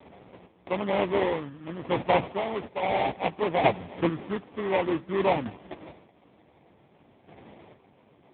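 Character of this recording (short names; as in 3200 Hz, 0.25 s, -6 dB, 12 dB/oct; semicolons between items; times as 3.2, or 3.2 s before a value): a quantiser's noise floor 10-bit, dither none; chopped level 0.55 Hz, depth 65%, duty 25%; aliases and images of a low sample rate 1500 Hz, jitter 20%; AMR-NB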